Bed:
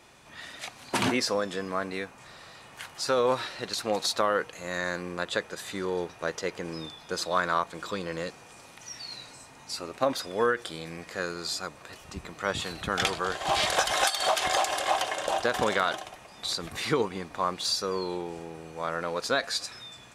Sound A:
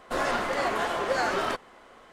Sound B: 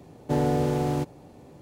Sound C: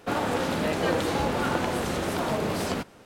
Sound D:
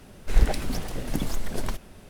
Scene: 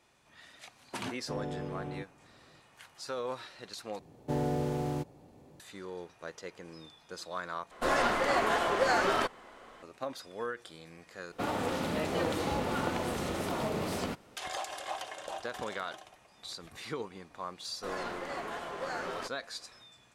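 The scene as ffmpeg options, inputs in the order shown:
ffmpeg -i bed.wav -i cue0.wav -i cue1.wav -i cue2.wav -filter_complex "[2:a]asplit=2[link_01][link_02];[1:a]asplit=2[link_03][link_04];[0:a]volume=-12dB[link_05];[link_01]aresample=8000,aresample=44100[link_06];[3:a]bandreject=frequency=1600:width=17[link_07];[link_05]asplit=4[link_08][link_09][link_10][link_11];[link_08]atrim=end=3.994[link_12];[link_02]atrim=end=1.61,asetpts=PTS-STARTPTS,volume=-7.5dB[link_13];[link_09]atrim=start=5.596:end=7.714[link_14];[link_03]atrim=end=2.12,asetpts=PTS-STARTPTS,volume=-0.5dB[link_15];[link_10]atrim=start=9.826:end=11.324[link_16];[link_07]atrim=end=3.05,asetpts=PTS-STARTPTS,volume=-6dB[link_17];[link_11]atrim=start=14.366[link_18];[link_06]atrim=end=1.61,asetpts=PTS-STARTPTS,volume=-14.5dB,afade=type=in:duration=0.004:curve=hsin,afade=type=out:start_time=1.606:duration=0.004:curve=hsin,adelay=990[link_19];[link_04]atrim=end=2.12,asetpts=PTS-STARTPTS,volume=-11.5dB,afade=type=in:duration=0.004:curve=hsin,afade=type=out:start_time=2.116:duration=0.004:curve=hsin,adelay=17720[link_20];[link_12][link_13]acrossfade=duration=0.004:curve1=hsin:curve2=hsin[link_21];[link_21][link_14]acrossfade=duration=0.004:curve1=hsin:curve2=hsin[link_22];[link_22][link_15]acrossfade=duration=0.004:curve1=hsin:curve2=hsin[link_23];[link_23][link_16]acrossfade=duration=0.004:curve1=hsin:curve2=hsin[link_24];[link_24][link_17]acrossfade=duration=0.004:curve1=hsin:curve2=hsin[link_25];[link_25][link_18]acrossfade=duration=0.004:curve1=hsin:curve2=hsin[link_26];[link_26][link_19][link_20]amix=inputs=3:normalize=0" out.wav

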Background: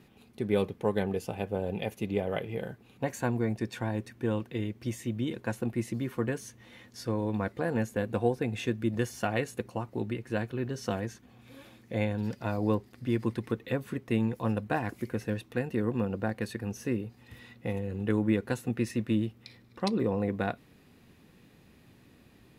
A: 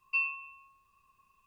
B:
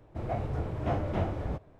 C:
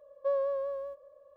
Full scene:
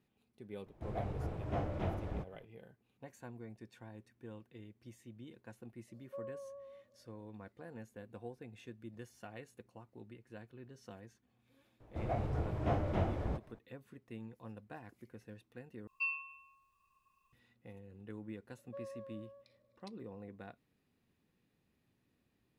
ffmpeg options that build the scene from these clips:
ffmpeg -i bed.wav -i cue0.wav -i cue1.wav -i cue2.wav -filter_complex "[2:a]asplit=2[link_01][link_02];[3:a]asplit=2[link_03][link_04];[0:a]volume=-20dB[link_05];[link_03]lowpass=frequency=1300:width=0.5412,lowpass=frequency=1300:width=1.3066[link_06];[link_05]asplit=2[link_07][link_08];[link_07]atrim=end=15.874[link_09];[1:a]atrim=end=1.46,asetpts=PTS-STARTPTS,volume=-6.5dB[link_10];[link_08]atrim=start=17.326[link_11];[link_01]atrim=end=1.79,asetpts=PTS-STARTPTS,volume=-7dB,afade=type=in:duration=0.004:curve=hsin,afade=type=out:start_time=1.786:duration=0.004:curve=hsin,adelay=660[link_12];[link_06]atrim=end=1.36,asetpts=PTS-STARTPTS,volume=-16dB,afade=type=in:duration=0.004:curve=hsin,afade=type=out:start_time=1.356:duration=0.004:curve=hsin,adelay=5880[link_13];[link_02]atrim=end=1.79,asetpts=PTS-STARTPTS,volume=-3.5dB,afade=type=in:duration=0.004:curve=hsin,afade=type=out:start_time=1.786:duration=0.004:curve=hsin,adelay=11800[link_14];[link_04]atrim=end=1.36,asetpts=PTS-STARTPTS,volume=-18dB,afade=type=in:duration=0.004:curve=hsin,afade=type=out:start_time=1.356:duration=0.004:curve=hsin,adelay=18480[link_15];[link_09][link_10]acrossfade=duration=0.004:curve1=hsin:curve2=hsin[link_16];[link_16][link_11]acrossfade=duration=0.004:curve1=hsin:curve2=hsin[link_17];[link_17][link_12][link_13][link_14][link_15]amix=inputs=5:normalize=0" out.wav

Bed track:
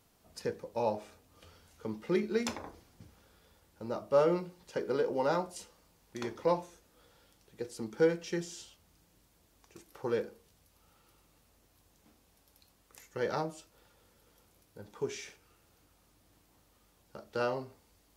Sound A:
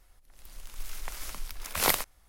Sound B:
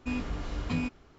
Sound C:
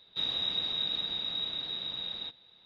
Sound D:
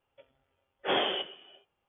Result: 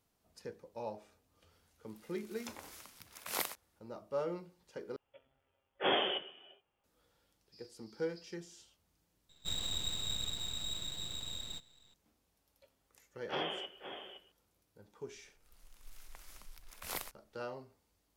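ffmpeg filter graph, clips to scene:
ffmpeg -i bed.wav -i cue0.wav -i cue1.wav -i cue2.wav -i cue3.wav -filter_complex "[1:a]asplit=2[link_01][link_02];[4:a]asplit=2[link_03][link_04];[0:a]volume=-10.5dB[link_05];[link_01]highpass=190[link_06];[2:a]asuperpass=centerf=4900:order=4:qfactor=6.4[link_07];[3:a]aeval=exprs='max(val(0),0)':channel_layout=same[link_08];[link_04]aecho=1:1:516:0.335[link_09];[link_02]volume=11.5dB,asoftclip=hard,volume=-11.5dB[link_10];[link_05]asplit=3[link_11][link_12][link_13];[link_11]atrim=end=4.964[link_14];[link_03]atrim=end=1.88,asetpts=PTS-STARTPTS,volume=-3dB[link_15];[link_12]atrim=start=6.836:end=9.294[link_16];[link_08]atrim=end=2.65,asetpts=PTS-STARTPTS,volume=-1.5dB[link_17];[link_13]atrim=start=11.936[link_18];[link_06]atrim=end=2.28,asetpts=PTS-STARTPTS,volume=-11.5dB,afade=type=in:duration=0.004:curve=hsin,afade=type=out:start_time=2.276:duration=0.004:curve=hsin,adelay=1510[link_19];[link_07]atrim=end=1.18,asetpts=PTS-STARTPTS,volume=-2dB,afade=type=in:duration=0.004:curve=hsin,afade=type=out:start_time=1.176:duration=0.004:curve=hsin,adelay=328986S[link_20];[link_09]atrim=end=1.88,asetpts=PTS-STARTPTS,volume=-10dB,afade=type=in:duration=0.004:curve=hsin,afade=type=out:start_time=1.876:duration=0.004:curve=hsin,adelay=12440[link_21];[link_10]atrim=end=2.28,asetpts=PTS-STARTPTS,volume=-15.5dB,afade=type=in:duration=0.004:curve=hsin,afade=type=out:start_time=2.276:duration=0.004:curve=hsin,adelay=15070[link_22];[link_14][link_15]acrossfade=duration=0.004:curve1=hsin:curve2=hsin[link_23];[link_23][link_16]acrossfade=duration=0.004:curve1=hsin:curve2=hsin[link_24];[link_24][link_17]acrossfade=duration=0.004:curve1=hsin:curve2=hsin[link_25];[link_25][link_18]acrossfade=duration=0.004:curve1=hsin:curve2=hsin[link_26];[link_26][link_19][link_20][link_21][link_22]amix=inputs=5:normalize=0" out.wav

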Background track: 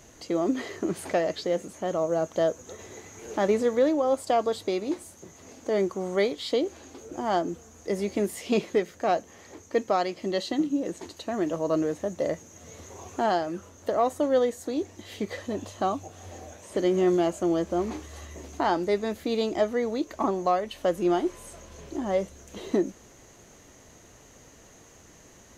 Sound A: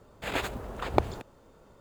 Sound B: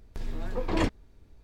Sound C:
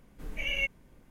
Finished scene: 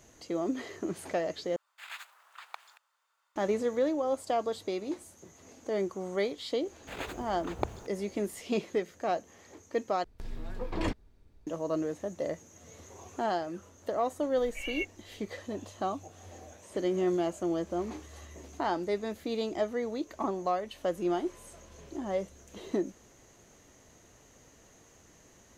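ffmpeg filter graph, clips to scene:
ffmpeg -i bed.wav -i cue0.wav -i cue1.wav -i cue2.wav -filter_complex "[1:a]asplit=2[link_01][link_02];[0:a]volume=-6dB[link_03];[link_01]highpass=frequency=1100:width=0.5412,highpass=frequency=1100:width=1.3066[link_04];[3:a]equalizer=frequency=160:width_type=o:width=2.9:gain=-12.5[link_05];[link_03]asplit=3[link_06][link_07][link_08];[link_06]atrim=end=1.564[link_09];[link_04]atrim=end=1.8,asetpts=PTS-STARTPTS,volume=-9.5dB[link_10];[link_07]atrim=start=3.356:end=10.044[link_11];[2:a]atrim=end=1.43,asetpts=PTS-STARTPTS,volume=-5.5dB[link_12];[link_08]atrim=start=11.466[link_13];[link_02]atrim=end=1.8,asetpts=PTS-STARTPTS,volume=-8dB,afade=type=in:duration=0.004:curve=hsin,afade=type=out:start_time=1.796:duration=0.004:curve=hsin,adelay=6650[link_14];[link_05]atrim=end=1.1,asetpts=PTS-STARTPTS,volume=-5.5dB,afade=type=in:duration=0.004:curve=hsin,afade=type=out:start_time=1.096:duration=0.004:curve=hsin,adelay=14180[link_15];[link_09][link_10]acrossfade=duration=0.004:curve1=hsin:curve2=hsin[link_16];[link_16][link_11]acrossfade=duration=0.004:curve1=hsin:curve2=hsin[link_17];[link_17][link_12]acrossfade=duration=0.004:curve1=hsin:curve2=hsin[link_18];[link_18][link_13]acrossfade=duration=0.004:curve1=hsin:curve2=hsin[link_19];[link_19][link_14][link_15]amix=inputs=3:normalize=0" out.wav

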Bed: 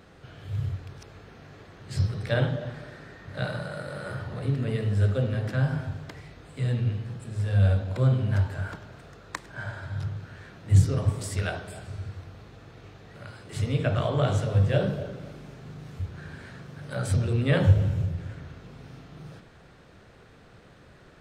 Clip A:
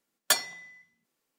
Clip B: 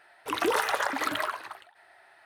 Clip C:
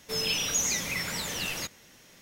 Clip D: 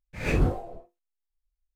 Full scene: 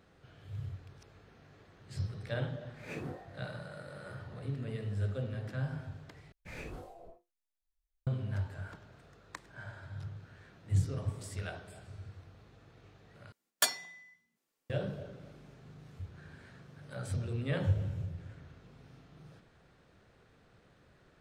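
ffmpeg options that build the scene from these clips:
ffmpeg -i bed.wav -i cue0.wav -i cue1.wav -i cue2.wav -i cue3.wav -filter_complex "[4:a]asplit=2[link_01][link_02];[0:a]volume=-11dB[link_03];[link_01]highpass=frequency=110:width=0.5412,highpass=frequency=110:width=1.3066[link_04];[link_02]acrossover=split=390|2900[link_05][link_06][link_07];[link_05]acompressor=threshold=-43dB:ratio=4[link_08];[link_06]acompressor=threshold=-44dB:ratio=4[link_09];[link_07]acompressor=threshold=-51dB:ratio=4[link_10];[link_08][link_09][link_10]amix=inputs=3:normalize=0[link_11];[link_03]asplit=3[link_12][link_13][link_14];[link_12]atrim=end=6.324[link_15];[link_11]atrim=end=1.75,asetpts=PTS-STARTPTS,volume=-5.5dB[link_16];[link_13]atrim=start=8.066:end=13.324[link_17];[1:a]atrim=end=1.38,asetpts=PTS-STARTPTS,volume=-4.5dB[link_18];[link_14]atrim=start=14.696[link_19];[link_04]atrim=end=1.75,asetpts=PTS-STARTPTS,volume=-14.5dB,afade=type=in:duration=0.004:curve=hsin,afade=type=out:start_time=1.746:duration=0.004:curve=hsin,adelay=2630[link_20];[link_15][link_16]acrossfade=duration=0.004:curve1=hsin:curve2=hsin[link_21];[link_21][link_17]acrossfade=duration=0.004:curve1=hsin:curve2=hsin[link_22];[link_22][link_18]acrossfade=duration=0.004:curve1=hsin:curve2=hsin[link_23];[link_23][link_19]acrossfade=duration=0.004:curve1=hsin:curve2=hsin[link_24];[link_24][link_20]amix=inputs=2:normalize=0" out.wav

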